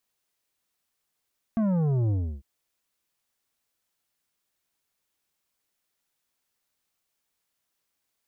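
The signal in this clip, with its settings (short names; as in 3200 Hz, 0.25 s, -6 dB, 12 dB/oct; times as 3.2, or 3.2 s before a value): sub drop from 230 Hz, over 0.85 s, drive 9.5 dB, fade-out 0.32 s, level -22.5 dB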